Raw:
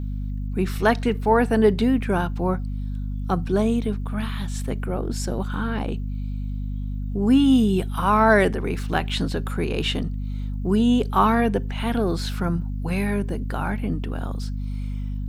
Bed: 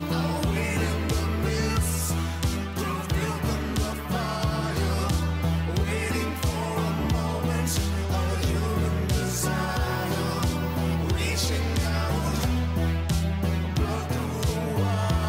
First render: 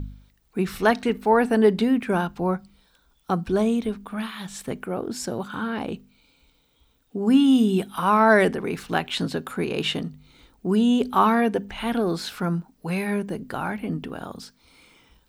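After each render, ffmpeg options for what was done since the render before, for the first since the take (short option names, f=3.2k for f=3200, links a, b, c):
-af "bandreject=f=50:t=h:w=4,bandreject=f=100:t=h:w=4,bandreject=f=150:t=h:w=4,bandreject=f=200:t=h:w=4,bandreject=f=250:t=h:w=4"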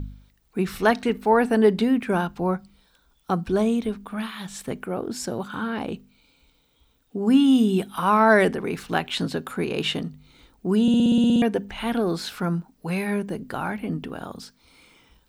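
-filter_complex "[0:a]asplit=11[a][b][c][d][e][f][g][h][i][j][k];[a]atrim=end=10.882[l];[b]atrim=start=10.818:end=10.882[m];[c]atrim=start=10.818:end=10.882[n];[d]atrim=start=10.818:end=10.882[o];[e]atrim=start=10.818:end=10.882[p];[f]atrim=start=10.818:end=10.882[q];[g]atrim=start=10.818:end=10.882[r];[h]atrim=start=10.818:end=10.882[s];[i]atrim=start=10.818:end=10.882[t];[j]atrim=start=10.818:end=10.882[u];[k]atrim=start=11.418[v];[l][m]acrossfade=d=0.004:c1=hsin:c2=hsin[w];[w][n]acrossfade=d=0.004:c1=hsin:c2=hsin[x];[x][o]acrossfade=d=0.004:c1=hsin:c2=hsin[y];[y][p]acrossfade=d=0.004:c1=hsin:c2=hsin[z];[z][q]acrossfade=d=0.004:c1=hsin:c2=hsin[aa];[aa][r]acrossfade=d=0.004:c1=hsin:c2=hsin[ab];[ab][s]acrossfade=d=0.004:c1=hsin:c2=hsin[ac];[ac][t]acrossfade=d=0.004:c1=hsin:c2=hsin[ad];[ad][u]acrossfade=d=0.004:c1=hsin:c2=hsin[ae];[ae][v]acrossfade=d=0.004:c1=hsin:c2=hsin"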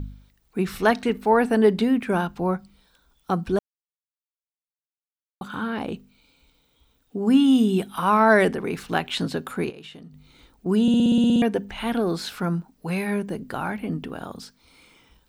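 -filter_complex "[0:a]asettb=1/sr,asplit=3[a][b][c];[a]atrim=end=9.704[d];[b]atrim=start=9.7:end=10.66,asetpts=PTS-STARTPTS,afade=t=in:d=0.004:c=qsin,afade=t=out:st=0.956:d=0.004:c=qsin,acompressor=threshold=-41dB:ratio=5:attack=3.2:release=140:knee=1:detection=peak[e];[c]atrim=start=10.656[f];[d][e]acrossfade=d=0.004:c1=hsin:c2=qsin[g];[g][f]acrossfade=d=0.004:c1=qsin:c2=hsin,asplit=3[h][i][j];[h]atrim=end=3.59,asetpts=PTS-STARTPTS,afade=t=out:st=3.586:d=0.004:c=hsin[k];[i]atrim=start=3.59:end=5.41,asetpts=PTS-STARTPTS,volume=0[l];[j]atrim=start=5.41,asetpts=PTS-STARTPTS,afade=t=in:d=0.004:c=hsin[m];[k][l][m]concat=n=3:v=0:a=1"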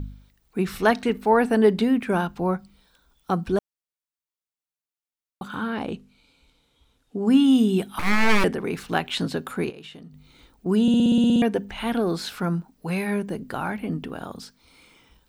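-filter_complex "[0:a]asettb=1/sr,asplit=3[a][b][c];[a]atrim=end=5.754[d];[b]atrim=start=5.75:end=7.32,asetpts=PTS-STARTPTS,afade=t=in:d=0.004:c=qsin,afade=t=out:st=1.566:d=0.004:c=qsin,lowpass=11k[e];[c]atrim=start=7.316[f];[d][e]acrossfade=d=0.004:c1=hsin:c2=qsin[g];[g][f]acrossfade=d=0.004:c1=qsin:c2=hsin,asettb=1/sr,asplit=3[h][i][j];[h]atrim=end=7.994[k];[i]atrim=start=7.99:end=8.44,asetpts=PTS-STARTPTS,afade=t=in:d=0.004:c=qsin,afade=t=out:st=0.446:d=0.004:c=qsin,aeval=exprs='abs(val(0))':c=same[l];[j]atrim=start=8.436[m];[k][l]acrossfade=d=0.004:c1=hsin:c2=qsin[n];[n][m]acrossfade=d=0.004:c1=qsin:c2=hsin"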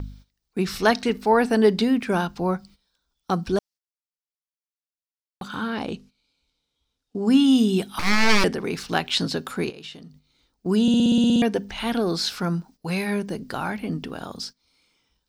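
-af "agate=range=-15dB:threshold=-46dB:ratio=16:detection=peak,equalizer=f=5.1k:w=1.4:g=11"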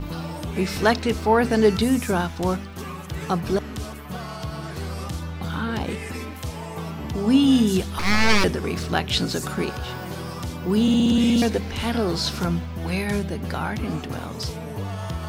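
-filter_complex "[1:a]volume=-5.5dB[a];[0:a][a]amix=inputs=2:normalize=0"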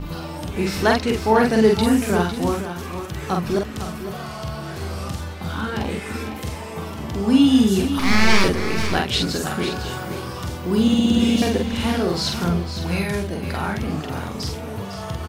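-filter_complex "[0:a]asplit=2[a][b];[b]adelay=46,volume=-3dB[c];[a][c]amix=inputs=2:normalize=0,aecho=1:1:504:0.316"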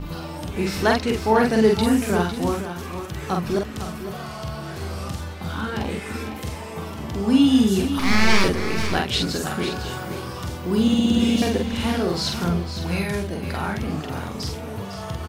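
-af "volume=-1.5dB"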